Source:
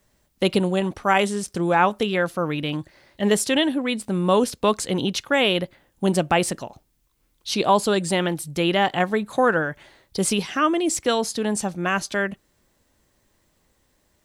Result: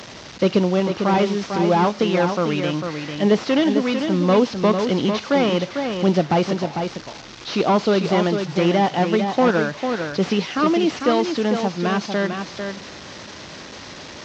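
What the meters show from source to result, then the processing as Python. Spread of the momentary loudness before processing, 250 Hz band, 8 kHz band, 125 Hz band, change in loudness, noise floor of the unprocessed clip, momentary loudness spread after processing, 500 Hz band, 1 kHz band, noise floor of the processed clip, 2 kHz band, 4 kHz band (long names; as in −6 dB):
7 LU, +4.5 dB, −8.5 dB, +4.5 dB, +2.0 dB, −67 dBFS, 17 LU, +3.5 dB, +1.0 dB, −38 dBFS, −2.0 dB, −1.0 dB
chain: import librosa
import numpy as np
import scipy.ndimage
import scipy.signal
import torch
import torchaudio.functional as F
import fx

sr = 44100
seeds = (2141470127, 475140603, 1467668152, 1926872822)

y = fx.delta_mod(x, sr, bps=32000, step_db=-33.5)
y = scipy.signal.sosfilt(scipy.signal.butter(2, 120.0, 'highpass', fs=sr, output='sos'), y)
y = fx.dynamic_eq(y, sr, hz=1700.0, q=3.2, threshold_db=-41.0, ratio=4.0, max_db=-4)
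y = y + 10.0 ** (-6.5 / 20.0) * np.pad(y, (int(449 * sr / 1000.0), 0))[:len(y)]
y = y * 10.0 ** (3.5 / 20.0)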